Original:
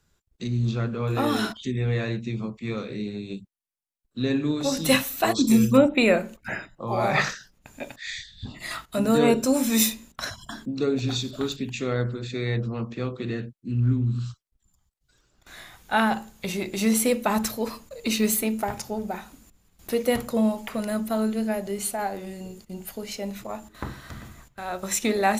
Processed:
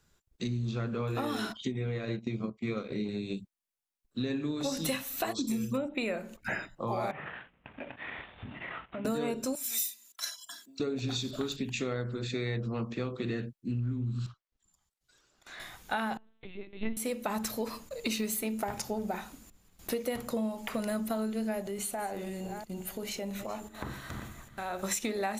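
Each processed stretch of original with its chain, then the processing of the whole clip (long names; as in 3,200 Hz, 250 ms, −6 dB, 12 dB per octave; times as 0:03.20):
0:01.56–0:03.09: notch comb filter 890 Hz + transient designer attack +3 dB, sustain −12 dB + high-shelf EQ 9,200 Hz −10.5 dB
0:07.11–0:09.05: variable-slope delta modulation 16 kbit/s + high-pass filter 53 Hz + downward compressor 4 to 1, threshold −37 dBFS
0:09.55–0:10.80: first difference + comb filter 3 ms, depth 79%
0:14.26–0:15.60: treble cut that deepens with the level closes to 2,200 Hz, closed at −39 dBFS + low-shelf EQ 220 Hz −11.5 dB + hard clipping −40 dBFS
0:16.17–0:16.97: comb filter 4.5 ms, depth 91% + linear-prediction vocoder at 8 kHz pitch kept + expander for the loud parts 2.5 to 1, over −24 dBFS
0:21.61–0:24.84: delay that plays each chunk backwards 343 ms, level −14 dB + parametric band 5,000 Hz −6 dB 0.26 octaves + downward compressor 3 to 1, threshold −33 dBFS
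whole clip: parametric band 60 Hz −3 dB 2.6 octaves; downward compressor 12 to 1, threshold −29 dBFS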